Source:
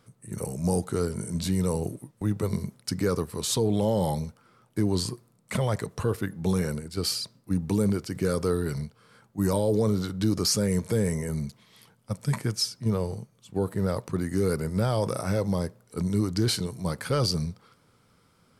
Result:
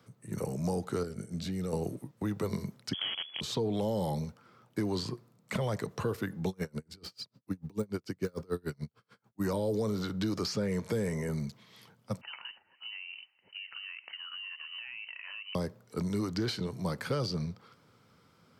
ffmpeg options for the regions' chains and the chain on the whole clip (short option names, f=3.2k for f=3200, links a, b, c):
-filter_complex "[0:a]asettb=1/sr,asplit=3[a][b][c];[a]atrim=end=1.034[d];[b]atrim=start=1.03:end=1.73,asetpts=PTS-STARTPTS,afade=t=in:d=0.004:c=qsin,afade=t=out:st=0.696:d=0.004:c=qsin,agate=range=-33dB:threshold=-28dB:ratio=3:release=100:detection=peak,acompressor=threshold=-31dB:ratio=3:attack=3.2:release=140:knee=1:detection=peak,asuperstop=centerf=980:order=4:qfactor=4.1[e];[c]atrim=start=1.726[f];[d][e]acrossfade=d=0.004:c1=hsin:c2=qsin[g];[g][f]acrossfade=d=0.004:c1=qsin:c2=hsin,asettb=1/sr,asplit=3[h][i][j];[h]atrim=end=2.934[k];[i]atrim=start=2.93:end=3.41,asetpts=PTS-STARTPTS,afade=t=in:d=0.004:c=qsin,afade=t=out:st=0.476:d=0.004:c=qsin,highshelf=f=2.5k:g=-8.5,acrusher=bits=5:dc=4:mix=0:aa=0.000001,lowpass=f=2.9k:t=q:w=0.5098,lowpass=f=2.9k:t=q:w=0.6013,lowpass=f=2.9k:t=q:w=0.9,lowpass=f=2.9k:t=q:w=2.563,afreqshift=-3400[l];[j]atrim=start=3.406[m];[k][l]acrossfade=d=0.004:c1=hsin:c2=qsin[n];[n][m]acrossfade=d=0.004:c1=qsin:c2=hsin,asettb=1/sr,asplit=3[o][p][q];[o]atrim=end=6.484[r];[p]atrim=start=6.48:end=9.42,asetpts=PTS-STARTPTS,afade=t=in:d=0.004:c=qsin,afade=t=out:st=2.936:d=0.004:c=qsin,deesser=0.7,aeval=exprs='val(0)*pow(10,-36*(0.5-0.5*cos(2*PI*6.8*n/s))/20)':c=same[s];[q]atrim=start=9.416[t];[r][s]acrossfade=d=0.004:c1=hsin:c2=qsin[u];[u][t]acrossfade=d=0.004:c1=qsin:c2=hsin,asettb=1/sr,asplit=3[v][w][x];[v]atrim=end=12.214[y];[w]atrim=start=12.21:end=15.55,asetpts=PTS-STARTPTS,afade=t=in:d=0.004:c=qsin,afade=t=out:st=3.336:d=0.004:c=qsin,highpass=f=260:w=0.5412,highpass=f=260:w=1.3066,acompressor=threshold=-38dB:ratio=20:attack=3.2:release=140:knee=1:detection=peak,lowpass=f=2.7k:t=q:w=0.5098,lowpass=f=2.7k:t=q:w=0.6013,lowpass=f=2.7k:t=q:w=0.9,lowpass=f=2.7k:t=q:w=2.563,afreqshift=-3200[z];[x]atrim=start=15.546[aa];[y][z]acrossfade=d=0.004:c1=hsin:c2=qsin[ab];[ab][aa]acrossfade=d=0.004:c1=qsin:c2=hsin,highpass=86,equalizer=f=9.8k:w=1.7:g=-10.5,acrossover=split=130|490|4500[ac][ad][ae][af];[ac]acompressor=threshold=-43dB:ratio=4[ag];[ad]acompressor=threshold=-33dB:ratio=4[ah];[ae]acompressor=threshold=-36dB:ratio=4[ai];[af]acompressor=threshold=-49dB:ratio=4[aj];[ag][ah][ai][aj]amix=inputs=4:normalize=0"